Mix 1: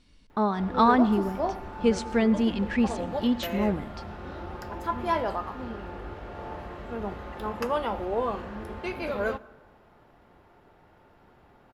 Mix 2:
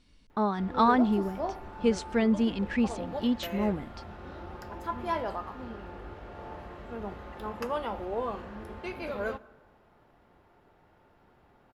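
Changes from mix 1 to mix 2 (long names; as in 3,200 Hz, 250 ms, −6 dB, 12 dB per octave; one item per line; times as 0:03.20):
speech: send off
background −4.5 dB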